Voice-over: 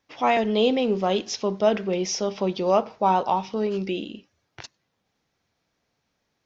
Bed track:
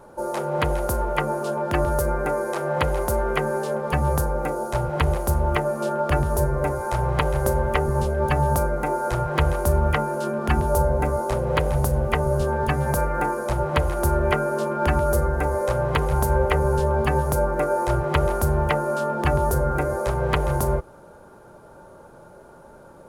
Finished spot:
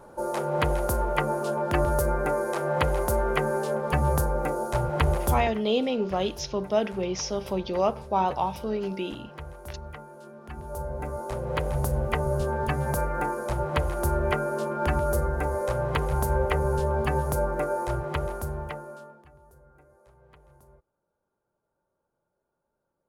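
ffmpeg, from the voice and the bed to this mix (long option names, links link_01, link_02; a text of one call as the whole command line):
ffmpeg -i stem1.wav -i stem2.wav -filter_complex "[0:a]adelay=5100,volume=-4dB[link_01];[1:a]volume=13.5dB,afade=type=out:start_time=5.29:duration=0.25:silence=0.125893,afade=type=in:start_time=10.51:duration=1.43:silence=0.16788,afade=type=out:start_time=17.51:duration=1.74:silence=0.0334965[link_02];[link_01][link_02]amix=inputs=2:normalize=0" out.wav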